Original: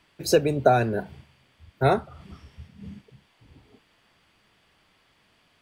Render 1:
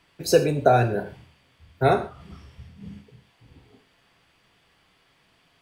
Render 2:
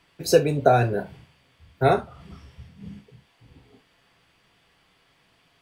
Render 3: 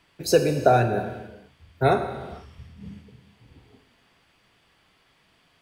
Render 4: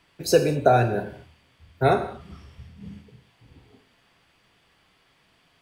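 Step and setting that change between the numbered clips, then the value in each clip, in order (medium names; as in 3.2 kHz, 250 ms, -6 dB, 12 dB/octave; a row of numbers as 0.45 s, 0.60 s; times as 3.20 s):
gated-style reverb, gate: 170 ms, 90 ms, 510 ms, 260 ms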